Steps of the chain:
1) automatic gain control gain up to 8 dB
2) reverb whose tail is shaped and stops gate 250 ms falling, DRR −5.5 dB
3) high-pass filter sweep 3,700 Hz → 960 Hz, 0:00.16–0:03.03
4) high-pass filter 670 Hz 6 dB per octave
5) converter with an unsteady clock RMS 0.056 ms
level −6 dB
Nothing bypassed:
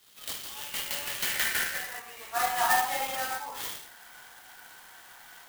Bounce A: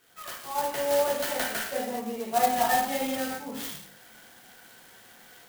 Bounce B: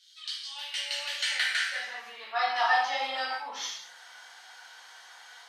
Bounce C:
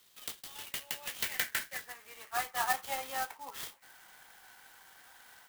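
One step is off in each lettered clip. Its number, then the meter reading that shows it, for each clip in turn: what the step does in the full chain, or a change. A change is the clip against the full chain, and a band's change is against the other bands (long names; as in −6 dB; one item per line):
3, 250 Hz band +15.5 dB
5, 250 Hz band −8.5 dB
2, change in crest factor +4.5 dB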